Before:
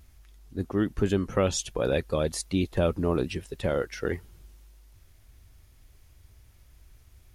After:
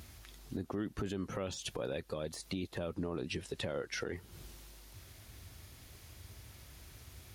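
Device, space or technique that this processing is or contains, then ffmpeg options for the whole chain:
broadcast voice chain: -filter_complex "[0:a]highpass=95,deesser=0.8,acompressor=threshold=-40dB:ratio=5,equalizer=frequency=4100:width_type=o:width=0.7:gain=3,alimiter=level_in=11.5dB:limit=-24dB:level=0:latency=1:release=49,volume=-11.5dB,asettb=1/sr,asplit=3[link_01][link_02][link_03];[link_01]atrim=end=2.944[link_04];[link_02]atrim=start=2.94:end=4.16,asetpts=PTS-STARTPTS,afade=type=in:duration=0.004:curve=qsin,afade=type=out:start_time=1.216:duration=0.004:curve=qsin,lowpass=11000[link_05];[link_03]atrim=start=4.156[link_06];[link_04][link_05]acrossfade=duration=0.004:curve1=hsin:curve2=qsin[link_07];[link_07][link_06]acrossfade=duration=0.004:curve1=qsin:curve2=hsin,volume=8dB"

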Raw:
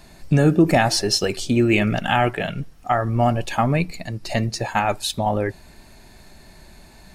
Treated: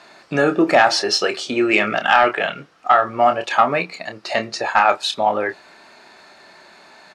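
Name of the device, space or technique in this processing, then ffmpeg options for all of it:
intercom: -filter_complex "[0:a]highpass=440,lowpass=4800,equalizer=frequency=1300:width_type=o:width=0.5:gain=7,asoftclip=type=tanh:threshold=-6.5dB,asplit=2[link_01][link_02];[link_02]adelay=28,volume=-9dB[link_03];[link_01][link_03]amix=inputs=2:normalize=0,volume=5dB"

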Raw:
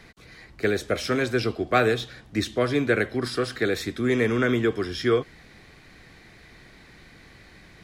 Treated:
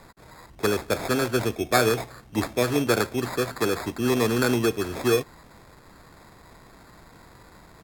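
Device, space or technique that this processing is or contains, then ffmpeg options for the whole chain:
crushed at another speed: -af "asetrate=55125,aresample=44100,acrusher=samples=12:mix=1:aa=0.000001,asetrate=35280,aresample=44100"

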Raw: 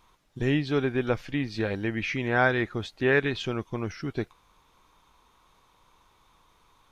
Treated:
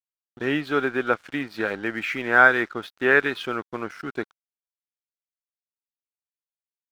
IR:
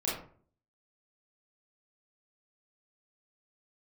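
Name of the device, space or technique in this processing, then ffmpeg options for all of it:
pocket radio on a weak battery: -af "highpass=260,lowpass=4500,aeval=exprs='sgn(val(0))*max(abs(val(0))-0.00376,0)':channel_layout=same,equalizer=frequency=1400:width_type=o:width=0.52:gain=10,volume=3dB"

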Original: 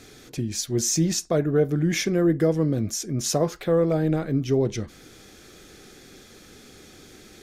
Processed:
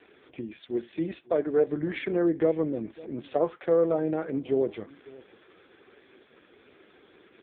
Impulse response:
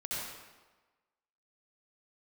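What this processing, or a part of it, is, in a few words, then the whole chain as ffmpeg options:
satellite phone: -filter_complex "[0:a]asettb=1/sr,asplit=3[link_01][link_02][link_03];[link_01]atrim=end=0.764[link_04];[link_02]atrim=start=0.76:end=1.67,asetpts=PTS-STARTPTS,afade=type=in:duration=0.004:curve=qsin,afade=type=out:start_time=0.906:duration=0.004:curve=qsin,highpass=180[link_05];[link_03]atrim=start=1.666[link_06];[link_04][link_05]acrossfade=duration=0.004:curve1=hsin:curve2=qsin[link_07];[link_07][link_06]acrossfade=duration=0.004:curve1=qsin:curve2=hsin,highpass=340,lowpass=3100,aecho=1:1:549:0.0891" -ar 8000 -c:a libopencore_amrnb -b:a 4750

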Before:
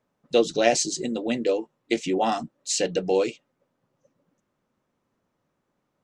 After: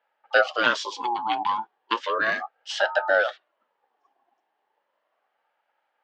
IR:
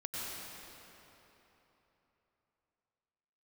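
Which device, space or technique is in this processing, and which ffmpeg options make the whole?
voice changer toy: -af "aeval=exprs='val(0)*sin(2*PI*810*n/s+810*0.35/0.35*sin(2*PI*0.35*n/s))':channel_layout=same,highpass=420,equalizer=frequency=590:width_type=q:width=4:gain=7,equalizer=frequency=840:width_type=q:width=4:gain=8,equalizer=frequency=1700:width_type=q:width=4:gain=5,equalizer=frequency=3000:width_type=q:width=4:gain=7,lowpass=frequency=4800:width=0.5412,lowpass=frequency=4800:width=1.3066"

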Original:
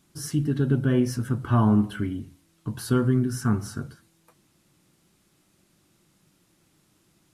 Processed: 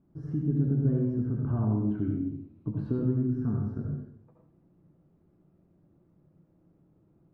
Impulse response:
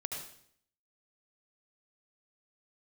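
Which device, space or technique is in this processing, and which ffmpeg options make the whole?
television next door: -filter_complex "[0:a]asettb=1/sr,asplit=3[link_01][link_02][link_03];[link_01]atrim=end=1.704[link_04];[link_02]atrim=start=1.7:end=3.36,asetpts=PTS-STARTPTS,afade=type=in:duration=0.004:curve=qsin,afade=type=out:start_time=1.656:duration=0.004:curve=qsin,equalizer=frequency=315:width_type=o:width=0.33:gain=7,equalizer=frequency=2500:width_type=o:width=0.33:gain=10,equalizer=frequency=4000:width_type=o:width=0.33:gain=8[link_05];[link_03]atrim=start=3.356[link_06];[link_04][link_05]acrossfade=duration=0.004:curve1=hsin:curve2=qsin[link_07];[link_07][link_06]acrossfade=duration=0.004:curve1=qsin:curve2=hsin,acompressor=threshold=-28dB:ratio=3,lowpass=570[link_08];[1:a]atrim=start_sample=2205[link_09];[link_08][link_09]afir=irnorm=-1:irlink=0,volume=2dB"

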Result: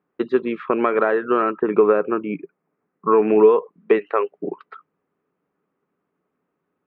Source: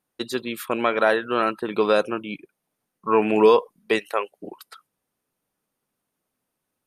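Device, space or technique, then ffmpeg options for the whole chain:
bass amplifier: -filter_complex "[0:a]acompressor=threshold=-22dB:ratio=3,highpass=75,equalizer=frequency=120:width_type=q:width=4:gain=-6,equalizer=frequency=170:width_type=q:width=4:gain=8,equalizer=frequency=290:width_type=q:width=4:gain=5,equalizer=frequency=410:width_type=q:width=4:gain=10,equalizer=frequency=1200:width_type=q:width=4:gain=6,lowpass=frequency=2300:width=0.5412,lowpass=frequency=2300:width=1.3066,asettb=1/sr,asplit=3[link_01][link_02][link_03];[link_01]atrim=end=1.504[link_04];[link_02]atrim=start=1.5:end=3.28,asetpts=PTS-STARTPTS,afade=type=in:duration=0.004:curve=qsin,afade=type=out:start_time=1.776:duration=0.004:curve=qsin,lowpass=frequency=2700:width=0.5412,lowpass=frequency=2700:width=1.3066[link_05];[link_03]atrim=start=3.276[link_06];[link_04][link_05]acrossfade=duration=0.004:curve1=hsin:curve2=qsin[link_07];[link_07][link_06]acrossfade=duration=0.004:curve1=qsin:curve2=hsin,volume=3dB"

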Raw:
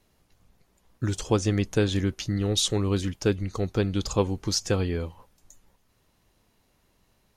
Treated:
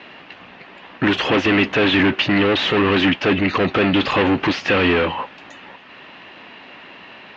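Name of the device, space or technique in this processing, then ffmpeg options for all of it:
overdrive pedal into a guitar cabinet: -filter_complex "[0:a]asplit=2[link_01][link_02];[link_02]highpass=frequency=720:poles=1,volume=38dB,asoftclip=type=tanh:threshold=-8.5dB[link_03];[link_01][link_03]amix=inputs=2:normalize=0,lowpass=frequency=3100:poles=1,volume=-6dB,highpass=97,equalizer=frequency=110:width_type=q:width=4:gain=-7,equalizer=frequency=270:width_type=q:width=4:gain=4,equalizer=frequency=460:width_type=q:width=4:gain=-3,equalizer=frequency=1800:width_type=q:width=4:gain=5,equalizer=frequency=2700:width_type=q:width=4:gain=8,lowpass=frequency=3600:width=0.5412,lowpass=frequency=3600:width=1.3066"

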